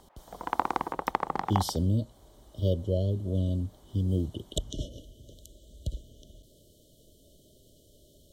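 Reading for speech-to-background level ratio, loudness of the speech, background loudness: 1.0 dB, −31.5 LKFS, −32.5 LKFS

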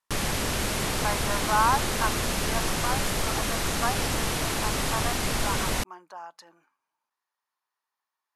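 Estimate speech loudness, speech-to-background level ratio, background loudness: −31.5 LKFS, −4.0 dB, −27.5 LKFS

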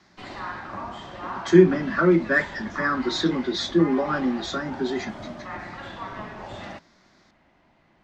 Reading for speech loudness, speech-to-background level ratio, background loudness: −22.5 LKFS, 14.5 dB, −37.0 LKFS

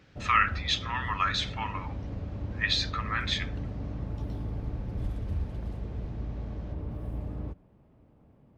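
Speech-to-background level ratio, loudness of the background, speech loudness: 8.0 dB, −37.0 LKFS, −29.0 LKFS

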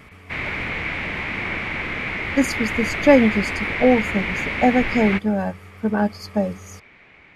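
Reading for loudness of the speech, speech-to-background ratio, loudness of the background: −20.5 LKFS, 4.0 dB, −24.5 LKFS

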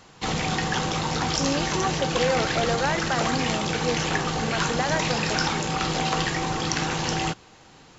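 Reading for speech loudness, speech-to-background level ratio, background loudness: −29.5 LKFS, −4.0 dB, −25.5 LKFS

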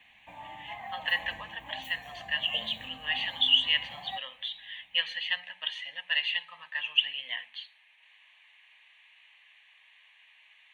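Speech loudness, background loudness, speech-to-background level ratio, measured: −29.5 LKFS, −45.0 LKFS, 15.5 dB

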